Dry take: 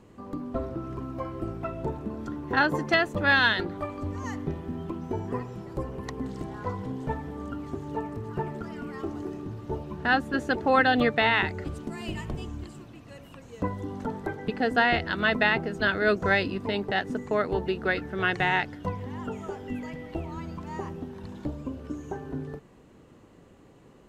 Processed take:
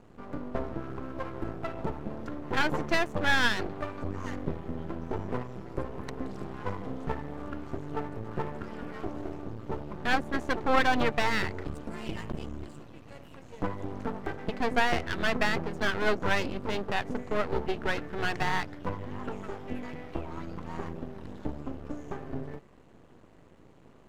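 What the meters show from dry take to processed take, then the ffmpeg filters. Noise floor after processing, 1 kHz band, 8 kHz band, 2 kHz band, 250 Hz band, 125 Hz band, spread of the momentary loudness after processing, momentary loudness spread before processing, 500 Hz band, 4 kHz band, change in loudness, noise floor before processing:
−55 dBFS, −3.0 dB, can't be measured, −5.0 dB, −4.0 dB, −3.0 dB, 13 LU, 15 LU, −3.5 dB, −3.5 dB, −4.0 dB, −54 dBFS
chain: -af "aeval=exprs='max(val(0),0)':channel_layout=same,highshelf=frequency=4100:gain=-5.5,volume=2dB"

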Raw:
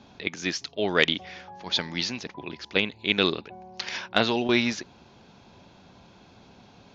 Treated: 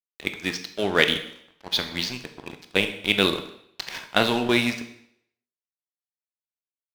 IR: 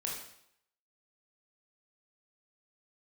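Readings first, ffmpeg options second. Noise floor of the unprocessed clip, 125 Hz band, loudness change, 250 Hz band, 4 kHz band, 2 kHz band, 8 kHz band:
−54 dBFS, +2.0 dB, +2.0 dB, +1.0 dB, +2.0 dB, +2.0 dB, can't be measured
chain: -filter_complex "[0:a]adynamicsmooth=sensitivity=8:basefreq=2500,aeval=exprs='sgn(val(0))*max(abs(val(0))-0.0126,0)':channel_layout=same,asplit=2[link_01][link_02];[1:a]atrim=start_sample=2205[link_03];[link_02][link_03]afir=irnorm=-1:irlink=0,volume=-4dB[link_04];[link_01][link_04]amix=inputs=2:normalize=0,volume=-1dB"

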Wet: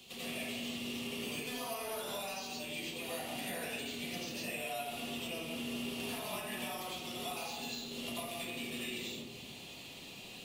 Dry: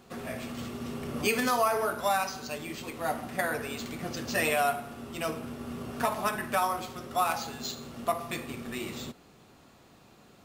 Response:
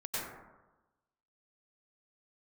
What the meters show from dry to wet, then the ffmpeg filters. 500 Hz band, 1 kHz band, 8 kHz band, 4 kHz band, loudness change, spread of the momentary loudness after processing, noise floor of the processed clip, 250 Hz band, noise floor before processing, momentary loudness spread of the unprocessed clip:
−10.5 dB, −14.5 dB, −5.0 dB, 0.0 dB, −8.5 dB, 4 LU, −50 dBFS, −6.0 dB, −57 dBFS, 12 LU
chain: -filter_complex "[0:a]highshelf=frequency=2100:width_type=q:width=3:gain=12,acrossover=split=180|1400|6500[link_01][link_02][link_03][link_04];[link_03]asoftclip=type=tanh:threshold=-19.5dB[link_05];[link_01][link_02][link_05][link_04]amix=inputs=4:normalize=0,acrossover=split=120|1000[link_06][link_07][link_08];[link_06]acompressor=threshold=-56dB:ratio=4[link_09];[link_07]acompressor=threshold=-35dB:ratio=4[link_10];[link_08]acompressor=threshold=-31dB:ratio=4[link_11];[link_09][link_10][link_11]amix=inputs=3:normalize=0,bandreject=frequency=60.43:width_type=h:width=4,bandreject=frequency=120.86:width_type=h:width=4,acompressor=threshold=-39dB:ratio=6,equalizer=frequency=5400:width_type=o:width=0.77:gain=-3[link_12];[1:a]atrim=start_sample=2205,asetrate=48510,aresample=44100[link_13];[link_12][link_13]afir=irnorm=-1:irlink=0"

